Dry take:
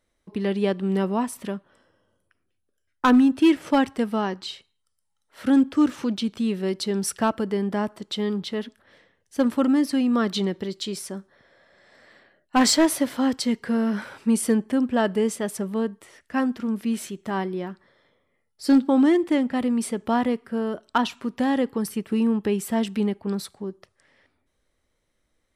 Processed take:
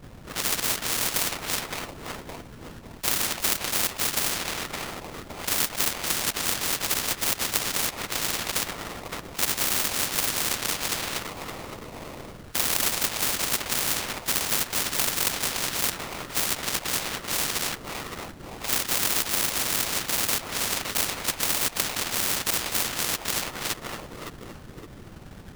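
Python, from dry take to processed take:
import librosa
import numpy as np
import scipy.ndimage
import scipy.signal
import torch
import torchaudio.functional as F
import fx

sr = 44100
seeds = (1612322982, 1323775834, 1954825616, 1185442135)

p1 = fx.dmg_noise_colour(x, sr, seeds[0], colour='brown', level_db=-52.0)
p2 = fx.chorus_voices(p1, sr, voices=2, hz=0.86, base_ms=26, depth_ms=4.5, mix_pct=65)
p3 = fx.whisperise(p2, sr, seeds[1])
p4 = fx.sample_hold(p3, sr, seeds[2], rate_hz=1600.0, jitter_pct=20)
p5 = fx.doubler(p4, sr, ms=20.0, db=-6, at=(9.48, 9.92))
p6 = p5 + fx.echo_feedback(p5, sr, ms=565, feedback_pct=26, wet_db=-16, dry=0)
p7 = fx.spectral_comp(p6, sr, ratio=10.0)
y = p7 * 10.0 ** (3.5 / 20.0)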